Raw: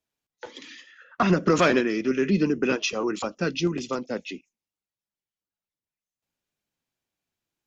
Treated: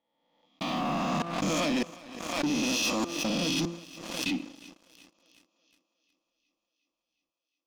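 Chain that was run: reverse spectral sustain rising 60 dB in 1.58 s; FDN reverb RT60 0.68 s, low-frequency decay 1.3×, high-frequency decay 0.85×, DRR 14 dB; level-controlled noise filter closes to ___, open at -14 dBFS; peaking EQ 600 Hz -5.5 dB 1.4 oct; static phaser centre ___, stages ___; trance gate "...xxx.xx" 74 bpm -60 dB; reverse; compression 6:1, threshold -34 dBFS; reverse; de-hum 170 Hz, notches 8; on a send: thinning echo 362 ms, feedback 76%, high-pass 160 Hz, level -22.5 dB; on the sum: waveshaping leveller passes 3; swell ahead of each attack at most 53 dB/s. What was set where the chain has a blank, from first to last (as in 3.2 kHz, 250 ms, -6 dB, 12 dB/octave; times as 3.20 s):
2.8 kHz, 410 Hz, 6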